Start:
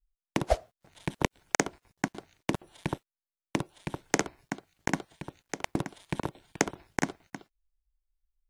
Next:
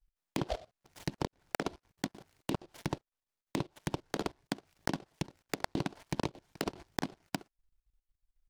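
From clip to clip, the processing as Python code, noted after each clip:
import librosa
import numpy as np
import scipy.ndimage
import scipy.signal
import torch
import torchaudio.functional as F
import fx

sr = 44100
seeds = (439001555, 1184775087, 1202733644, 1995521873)

y = fx.level_steps(x, sr, step_db=19)
y = fx.env_lowpass_down(y, sr, base_hz=1500.0, full_db=-40.0)
y = fx.noise_mod_delay(y, sr, seeds[0], noise_hz=3000.0, depth_ms=0.068)
y = F.gain(torch.from_numpy(y), 6.0).numpy()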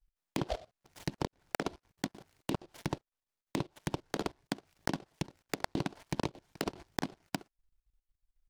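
y = x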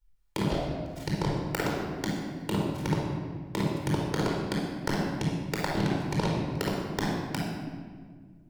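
y = fx.room_shoebox(x, sr, seeds[1], volume_m3=2200.0, walls='mixed', distance_m=4.5)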